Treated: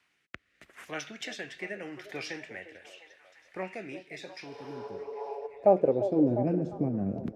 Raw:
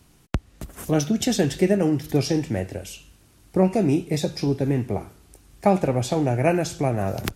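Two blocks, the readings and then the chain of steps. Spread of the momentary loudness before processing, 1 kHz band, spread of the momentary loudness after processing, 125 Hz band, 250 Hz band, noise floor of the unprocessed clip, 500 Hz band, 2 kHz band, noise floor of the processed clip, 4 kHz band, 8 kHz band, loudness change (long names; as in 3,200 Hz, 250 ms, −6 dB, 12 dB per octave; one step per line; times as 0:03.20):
12 LU, −8.0 dB, 23 LU, −14.0 dB, −9.5 dB, −56 dBFS, −6.0 dB, −6.0 dB, −73 dBFS, −12.0 dB, −18.0 dB, −7.5 dB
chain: healed spectral selection 0:04.53–0:05.44, 410–9,700 Hz before
rotating-speaker cabinet horn 0.8 Hz, later 6.3 Hz, at 0:04.83
band-pass filter sweep 2,000 Hz → 230 Hz, 0:04.53–0:06.50
echo through a band-pass that steps 350 ms, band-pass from 470 Hz, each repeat 0.7 octaves, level −8.5 dB
level +3 dB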